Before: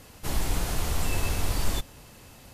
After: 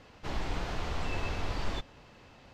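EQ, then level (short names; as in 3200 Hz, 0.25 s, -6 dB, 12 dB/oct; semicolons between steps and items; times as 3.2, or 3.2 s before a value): air absorption 190 m; low shelf 250 Hz -7 dB; -1.0 dB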